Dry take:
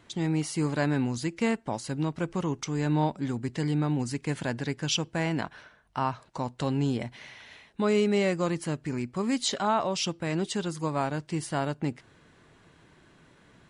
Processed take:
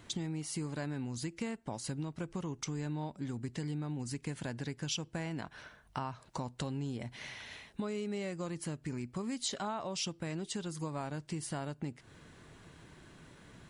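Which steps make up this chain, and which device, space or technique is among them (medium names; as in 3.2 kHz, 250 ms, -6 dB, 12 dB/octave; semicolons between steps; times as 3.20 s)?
ASMR close-microphone chain (bass shelf 180 Hz +5.5 dB; compression 6:1, threshold -36 dBFS, peak gain reduction 16 dB; treble shelf 6 kHz +7.5 dB)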